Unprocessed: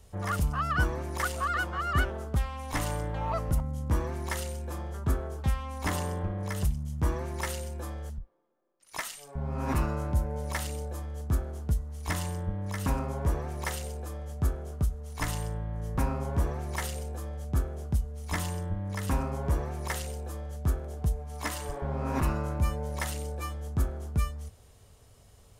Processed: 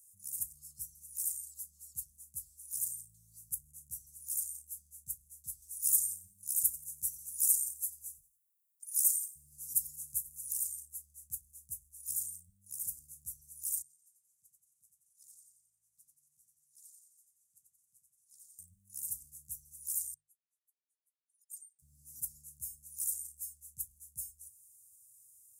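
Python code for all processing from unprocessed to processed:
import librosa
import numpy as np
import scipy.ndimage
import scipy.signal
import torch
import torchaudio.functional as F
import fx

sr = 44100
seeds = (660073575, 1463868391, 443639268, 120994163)

y = fx.chain(x, sr, fx.high_shelf(hz=2800.0, db=8.5),
    fx.echo_feedback(ms=89, feedback_pct=37, wet_db=-17.5), at=(5.62, 10.53))
y = fx.chain(y, sr, fx.bandpass_q(hz=1600.0, q=1.9),
    fx.echo_feedback(ms=89, feedback_pct=54, wet_db=-4.5),
    fx.transformer_sat(knee_hz=1500.0), at=(13.82, 18.59))
y = fx.chain(y, sr, fx.spec_expand(power=2.1),
    fx.highpass(hz=1100.0, slope=24),
    fx.over_compress(threshold_db=-53.0, ratio=-0.5), at=(20.14, 21.79))
y = scipy.signal.sosfilt(scipy.signal.cheby2(4, 60, [430.0, 2800.0], 'bandstop', fs=sr, output='sos'), y)
y = np.diff(y, prepend=0.0)
y = fx.hum_notches(y, sr, base_hz=50, count=3)
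y = y * librosa.db_to_amplitude(6.0)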